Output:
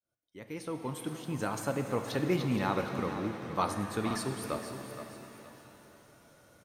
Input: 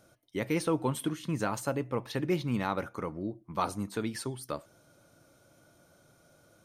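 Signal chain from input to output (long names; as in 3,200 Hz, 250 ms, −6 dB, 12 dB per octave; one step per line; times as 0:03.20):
fade in at the beginning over 2.05 s
on a send: repeating echo 470 ms, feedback 33%, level −11 dB
on the sum: buffer that repeats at 0:04.06, samples 2,048, times 1
reverb with rising layers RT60 3.4 s, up +7 semitones, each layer −8 dB, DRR 6 dB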